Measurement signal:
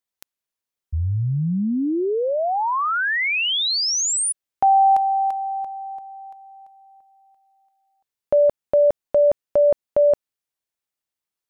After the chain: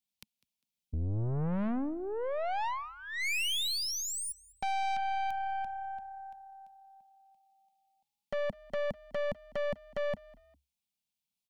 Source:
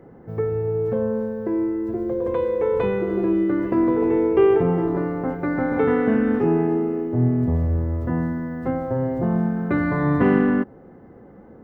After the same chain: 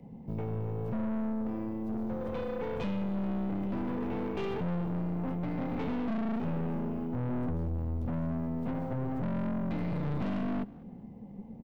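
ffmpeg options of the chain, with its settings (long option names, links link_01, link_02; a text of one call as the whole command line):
ffmpeg -i in.wav -filter_complex "[0:a]firequalizer=gain_entry='entry(110,0);entry(210,9);entry(340,-14);entry(500,-8);entry(900,-3);entry(1400,-28);entry(2300,1);entry(3400,3);entry(6600,0)':delay=0.05:min_phase=1,acrossover=split=97|3000[link_01][link_02][link_03];[link_01]acompressor=threshold=-29dB:ratio=8[link_04];[link_02]acompressor=threshold=-27dB:ratio=1.5[link_05];[link_03]acompressor=threshold=-35dB:ratio=5[link_06];[link_04][link_05][link_06]amix=inputs=3:normalize=0,aeval=exprs='(tanh(35.5*val(0)+0.55)-tanh(0.55))/35.5':channel_layout=same,asplit=2[link_07][link_08];[link_08]asplit=2[link_09][link_10];[link_09]adelay=201,afreqshift=34,volume=-22.5dB[link_11];[link_10]adelay=402,afreqshift=68,volume=-32.1dB[link_12];[link_11][link_12]amix=inputs=2:normalize=0[link_13];[link_07][link_13]amix=inputs=2:normalize=0" out.wav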